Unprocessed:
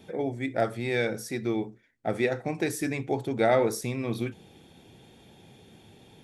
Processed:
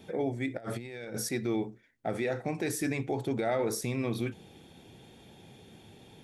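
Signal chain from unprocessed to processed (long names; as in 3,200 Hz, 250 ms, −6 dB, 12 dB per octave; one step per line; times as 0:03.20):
brickwall limiter −21 dBFS, peak gain reduction 10.5 dB
0:00.57–0:01.29: compressor whose output falls as the input rises −37 dBFS, ratio −0.5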